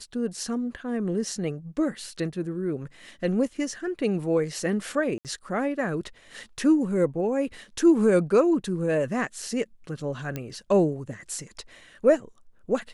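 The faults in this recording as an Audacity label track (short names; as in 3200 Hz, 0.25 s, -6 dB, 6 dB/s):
5.180000	5.250000	gap 68 ms
10.360000	10.360000	pop -17 dBFS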